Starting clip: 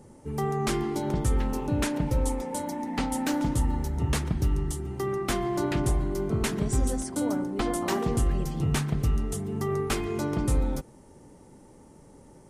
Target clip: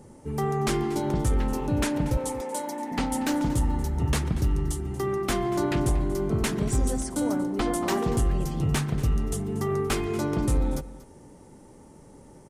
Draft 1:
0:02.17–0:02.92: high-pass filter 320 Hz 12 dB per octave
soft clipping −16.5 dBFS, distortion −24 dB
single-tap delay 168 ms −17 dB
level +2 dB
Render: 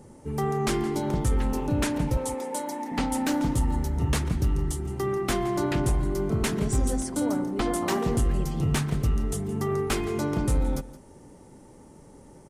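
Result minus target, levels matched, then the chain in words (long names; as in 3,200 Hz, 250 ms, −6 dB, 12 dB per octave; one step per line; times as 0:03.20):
echo 67 ms early
0:02.17–0:02.92: high-pass filter 320 Hz 12 dB per octave
soft clipping −16.5 dBFS, distortion −24 dB
single-tap delay 235 ms −17 dB
level +2 dB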